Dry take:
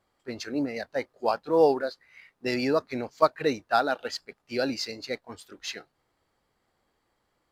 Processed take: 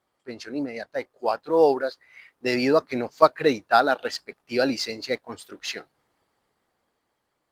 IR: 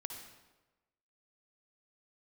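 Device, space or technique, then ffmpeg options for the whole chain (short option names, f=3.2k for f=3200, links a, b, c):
video call: -filter_complex "[0:a]asplit=3[a][b][c];[a]afade=t=out:st=0.93:d=0.02[d];[b]equalizer=f=200:w=2.5:g=-4,afade=t=in:st=0.93:d=0.02,afade=t=out:st=2.54:d=0.02[e];[c]afade=t=in:st=2.54:d=0.02[f];[d][e][f]amix=inputs=3:normalize=0,highpass=f=130:p=1,dynaudnorm=f=320:g=11:m=8dB" -ar 48000 -c:a libopus -b:a 24k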